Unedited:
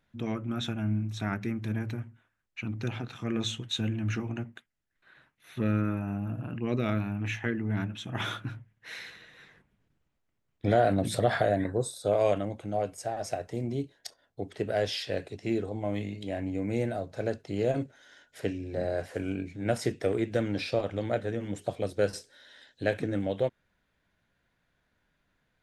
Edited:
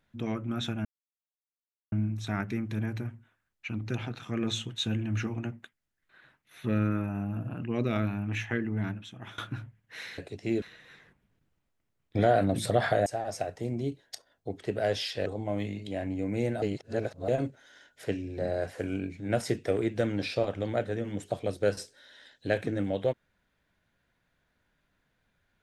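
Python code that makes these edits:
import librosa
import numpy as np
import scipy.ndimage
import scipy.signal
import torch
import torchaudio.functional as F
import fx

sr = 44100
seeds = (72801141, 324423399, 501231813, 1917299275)

y = fx.edit(x, sr, fx.insert_silence(at_s=0.85, length_s=1.07),
    fx.fade_out_to(start_s=7.65, length_s=0.66, floor_db=-21.0),
    fx.cut(start_s=11.55, length_s=1.43),
    fx.move(start_s=15.18, length_s=0.44, to_s=9.11),
    fx.reverse_span(start_s=16.98, length_s=0.66), tone=tone)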